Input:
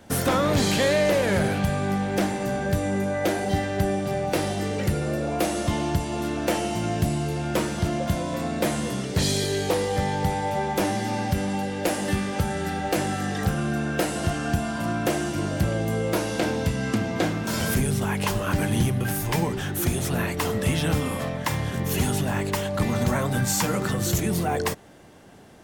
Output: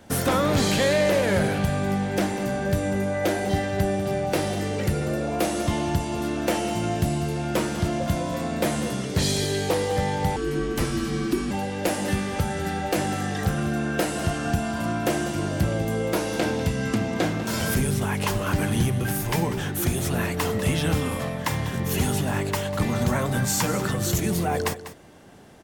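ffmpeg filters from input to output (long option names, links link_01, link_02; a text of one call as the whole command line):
ffmpeg -i in.wav -filter_complex "[0:a]aecho=1:1:195:0.211,asettb=1/sr,asplit=3[link_01][link_02][link_03];[link_01]atrim=end=10.364[link_04];[link_02]atrim=start=10.36:end=11.51,asetpts=PTS-STARTPTS,afade=type=in:duration=0.004:curve=qsin,afade=type=out:start_time=1.146:duration=0.004:curve=qsin,afreqshift=-440[link_05];[link_03]atrim=start=11.506[link_06];[link_04][link_05]acrossfade=duration=0.004:curve1=hsin:curve2=qsin[link_07];[link_07][link_06]acrossfade=duration=0.004:curve1=qsin:curve2=hsin" out.wav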